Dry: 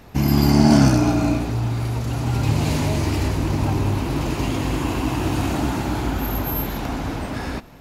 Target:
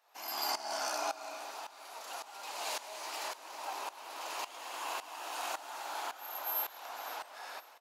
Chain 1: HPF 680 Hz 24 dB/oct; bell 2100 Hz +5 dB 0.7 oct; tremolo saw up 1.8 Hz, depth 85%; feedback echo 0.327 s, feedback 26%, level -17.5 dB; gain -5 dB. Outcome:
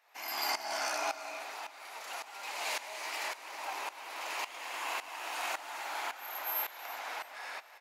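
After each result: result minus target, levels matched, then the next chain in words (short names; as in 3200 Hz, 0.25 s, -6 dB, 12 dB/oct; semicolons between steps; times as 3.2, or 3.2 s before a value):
echo 0.184 s early; 2000 Hz band +4.0 dB
HPF 680 Hz 24 dB/oct; bell 2100 Hz +5 dB 0.7 oct; tremolo saw up 1.8 Hz, depth 85%; feedback echo 0.511 s, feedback 26%, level -17.5 dB; gain -5 dB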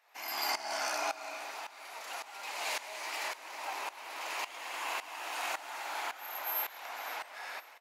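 2000 Hz band +4.0 dB
HPF 680 Hz 24 dB/oct; bell 2100 Hz -4.5 dB 0.7 oct; tremolo saw up 1.8 Hz, depth 85%; feedback echo 0.511 s, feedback 26%, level -17.5 dB; gain -5 dB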